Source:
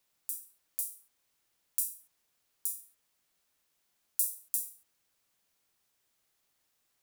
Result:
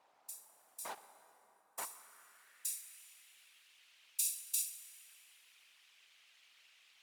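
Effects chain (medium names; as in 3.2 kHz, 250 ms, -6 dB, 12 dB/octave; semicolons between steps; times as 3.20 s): in parallel at -1 dB: compressor with a negative ratio -33 dBFS, ratio -0.5; 0.85–1.85 s: on the sum: word length cut 6-bit, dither none; whisper effect; plate-style reverb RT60 3.7 s, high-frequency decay 0.6×, DRR 11.5 dB; band-pass sweep 790 Hz -> 2.7 kHz, 1.66–3.04 s; trim +15 dB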